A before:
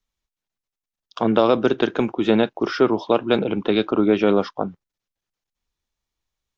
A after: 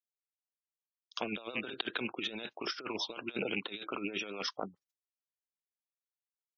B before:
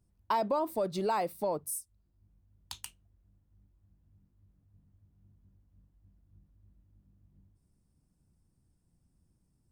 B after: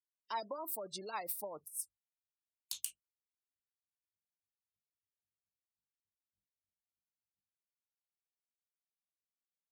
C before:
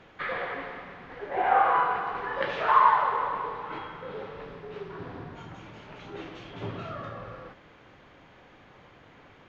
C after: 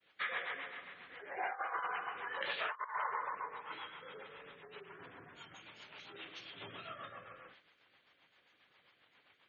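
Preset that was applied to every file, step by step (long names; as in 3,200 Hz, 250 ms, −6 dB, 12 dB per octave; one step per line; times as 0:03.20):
loose part that buzzes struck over −26 dBFS, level −21 dBFS
downward expander −47 dBFS
gate on every frequency bin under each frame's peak −30 dB strong
low-shelf EQ 200 Hz +8.5 dB
rotating-speaker cabinet horn 7.5 Hz
first difference
compressor whose output falls as the input rises −45 dBFS, ratio −0.5
level +7.5 dB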